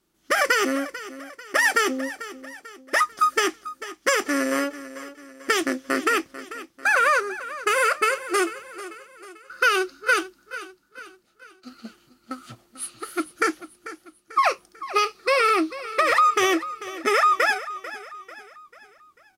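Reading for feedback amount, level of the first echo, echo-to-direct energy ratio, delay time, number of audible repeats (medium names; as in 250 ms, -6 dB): 46%, -15.0 dB, -14.0 dB, 443 ms, 3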